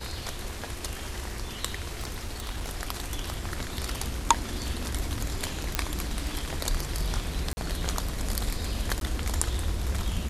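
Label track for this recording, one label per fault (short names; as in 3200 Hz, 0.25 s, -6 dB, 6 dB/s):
2.000000	2.700000	clipped -27.5 dBFS
5.750000	5.750000	pop -7 dBFS
7.530000	7.570000	gap 40 ms
9.000000	9.010000	gap 12 ms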